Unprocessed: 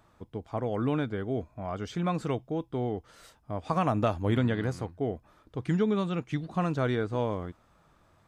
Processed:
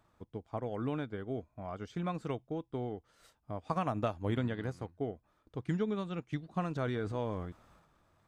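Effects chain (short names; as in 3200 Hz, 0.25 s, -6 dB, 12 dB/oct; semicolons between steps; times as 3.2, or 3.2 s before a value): transient shaper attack +3 dB, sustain -5 dB, from 6.75 s sustain +9 dB; gain -7.5 dB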